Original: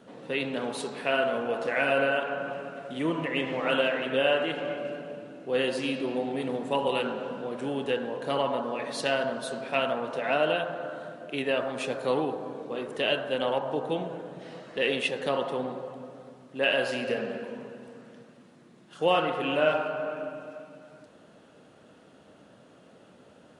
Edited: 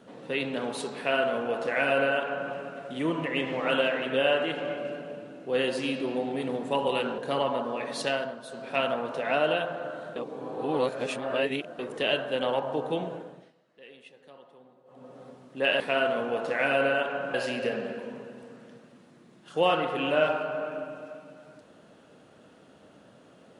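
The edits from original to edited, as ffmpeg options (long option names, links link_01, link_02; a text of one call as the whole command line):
ffmpeg -i in.wav -filter_complex "[0:a]asplit=10[link_01][link_02][link_03][link_04][link_05][link_06][link_07][link_08][link_09][link_10];[link_01]atrim=end=7.182[link_11];[link_02]atrim=start=8.168:end=9.35,asetpts=PTS-STARTPTS,afade=type=out:start_time=0.862:duration=0.32:silence=0.375837[link_12];[link_03]atrim=start=9.35:end=9.47,asetpts=PTS-STARTPTS,volume=-8.5dB[link_13];[link_04]atrim=start=9.47:end=11.152,asetpts=PTS-STARTPTS,afade=type=in:duration=0.32:silence=0.375837[link_14];[link_05]atrim=start=11.148:end=12.782,asetpts=PTS-STARTPTS,areverse[link_15];[link_06]atrim=start=12.778:end=14.52,asetpts=PTS-STARTPTS,afade=type=out:start_time=1.332:duration=0.41:silence=0.0668344[link_16];[link_07]atrim=start=14.52:end=15.84,asetpts=PTS-STARTPTS,volume=-23.5dB[link_17];[link_08]atrim=start=15.84:end=16.792,asetpts=PTS-STARTPTS,afade=type=in:duration=0.41:silence=0.0668344[link_18];[link_09]atrim=start=0.968:end=2.512[link_19];[link_10]atrim=start=16.788[link_20];[link_12][link_13][link_14]concat=n=3:v=0:a=1[link_21];[link_11][link_21]acrossfade=duration=0.004:curve1=hsin:curve2=hsin[link_22];[link_22][link_15]acrossfade=duration=0.004:curve1=hsin:curve2=hsin[link_23];[link_16][link_17][link_18]concat=n=3:v=0:a=1[link_24];[link_23][link_24]acrossfade=duration=0.004:curve1=hsin:curve2=hsin[link_25];[link_25][link_19]acrossfade=duration=0.004:curve1=hsin:curve2=hsin[link_26];[link_26][link_20]acrossfade=duration=0.004:curve1=hsin:curve2=hsin" out.wav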